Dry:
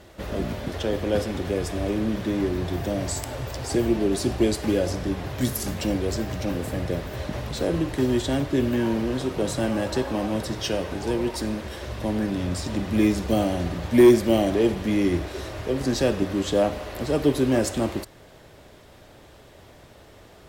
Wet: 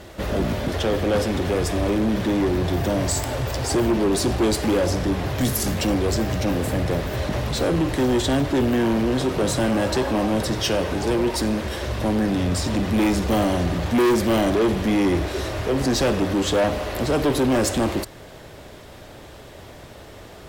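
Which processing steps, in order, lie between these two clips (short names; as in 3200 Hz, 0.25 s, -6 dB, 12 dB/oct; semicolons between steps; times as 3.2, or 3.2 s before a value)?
soft clip -23 dBFS, distortion -7 dB; gain +7.5 dB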